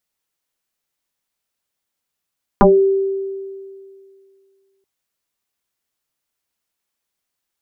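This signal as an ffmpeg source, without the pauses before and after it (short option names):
-f lavfi -i "aevalsrc='0.562*pow(10,-3*t/2.26)*sin(2*PI*389*t+4.7*pow(10,-3*t/0.24)*sin(2*PI*0.52*389*t))':d=2.23:s=44100"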